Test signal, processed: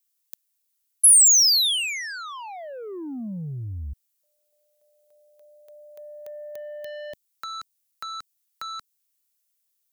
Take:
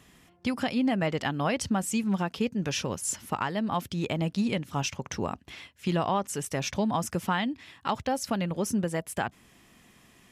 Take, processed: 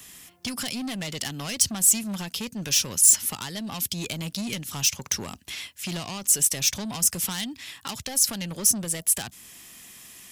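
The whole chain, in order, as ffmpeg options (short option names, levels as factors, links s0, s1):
-filter_complex "[0:a]asoftclip=type=tanh:threshold=0.0447,crystalizer=i=7:c=0,acrossover=split=270|3000[s0][s1][s2];[s1]acompressor=threshold=0.0141:ratio=4[s3];[s0][s3][s2]amix=inputs=3:normalize=0"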